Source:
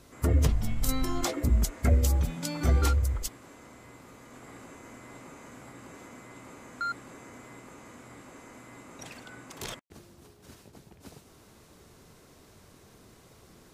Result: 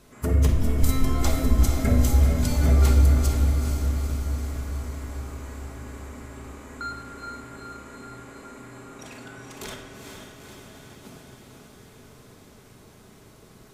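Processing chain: bell 5000 Hz -2 dB; diffused feedback echo 0.461 s, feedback 67%, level -5 dB; reverb RT60 1.5 s, pre-delay 5 ms, DRR 2 dB

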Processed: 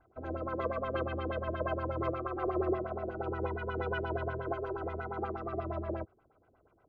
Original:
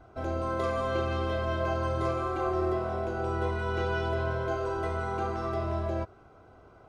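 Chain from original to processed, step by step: LFO low-pass sine 8.4 Hz 300–3000 Hz; upward expander 1.5:1, over -44 dBFS; gain -4.5 dB

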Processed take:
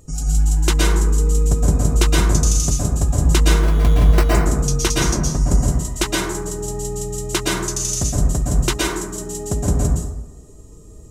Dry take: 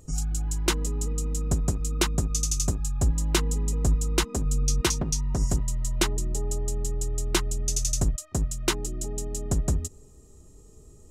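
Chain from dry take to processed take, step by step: 3.51–4.3 sample-rate reducer 3400 Hz, jitter 0%; plate-style reverb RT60 0.99 s, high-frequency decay 0.4×, pre-delay 0.105 s, DRR -4 dB; gain +3.5 dB

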